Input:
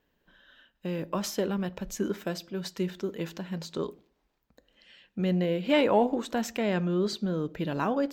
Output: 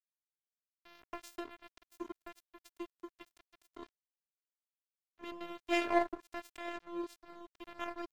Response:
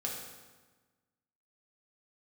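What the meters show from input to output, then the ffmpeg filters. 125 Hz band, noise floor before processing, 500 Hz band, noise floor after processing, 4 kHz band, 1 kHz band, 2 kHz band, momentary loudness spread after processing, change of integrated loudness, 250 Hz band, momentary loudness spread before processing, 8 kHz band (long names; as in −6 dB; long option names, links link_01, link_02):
below −35 dB, −75 dBFS, −13.0 dB, below −85 dBFS, −11.5 dB, −7.5 dB, −6.0 dB, 22 LU, −10.0 dB, −14.0 dB, 11 LU, −17.0 dB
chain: -af "aeval=exprs='0.266*(cos(1*acos(clip(val(0)/0.266,-1,1)))-cos(1*PI/2))+0.0668*(cos(3*acos(clip(val(0)/0.266,-1,1)))-cos(3*PI/2))+0.00335*(cos(5*acos(clip(val(0)/0.266,-1,1)))-cos(5*PI/2))+0.00376*(cos(7*acos(clip(val(0)/0.266,-1,1)))-cos(7*PI/2))':channel_layout=same,afftfilt=real='hypot(re,im)*cos(PI*b)':imag='0':win_size=512:overlap=0.75,aeval=exprs='sgn(val(0))*max(abs(val(0))-0.00501,0)':channel_layout=same,volume=2.5dB"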